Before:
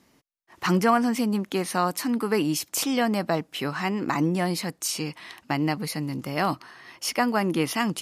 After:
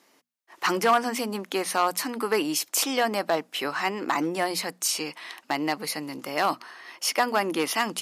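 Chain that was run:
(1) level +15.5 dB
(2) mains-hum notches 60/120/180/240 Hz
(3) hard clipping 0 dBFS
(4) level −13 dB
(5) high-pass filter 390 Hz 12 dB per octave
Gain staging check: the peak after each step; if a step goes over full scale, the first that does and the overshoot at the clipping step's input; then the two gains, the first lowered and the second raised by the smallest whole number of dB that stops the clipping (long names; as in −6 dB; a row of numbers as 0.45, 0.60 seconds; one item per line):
+6.0, +6.5, 0.0, −13.0, −9.0 dBFS
step 1, 6.5 dB
step 1 +8.5 dB, step 4 −6 dB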